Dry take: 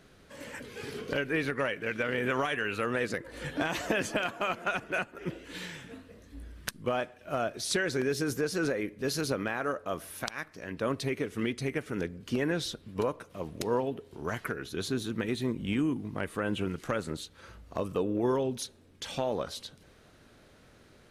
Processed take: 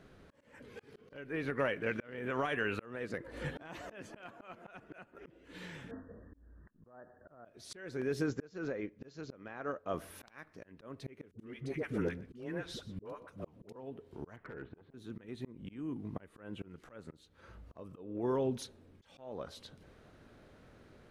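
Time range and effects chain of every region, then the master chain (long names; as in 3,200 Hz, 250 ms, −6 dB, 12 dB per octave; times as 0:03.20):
0:05.91–0:07.45: linear-phase brick-wall low-pass 1,900 Hz + downward compressor 12 to 1, threshold −35 dBFS
0:08.26–0:09.94: linear-phase brick-wall low-pass 7,500 Hz + expander for the loud parts, over −49 dBFS
0:11.31–0:13.76: all-pass dispersion highs, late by 79 ms, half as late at 520 Hz + single-tap delay 123 ms −20 dB
0:14.36–0:14.94: low-pass filter 2,200 Hz 24 dB per octave + gain into a clipping stage and back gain 29 dB + saturating transformer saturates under 280 Hz
whole clip: high-shelf EQ 2,800 Hz −11 dB; volume swells 604 ms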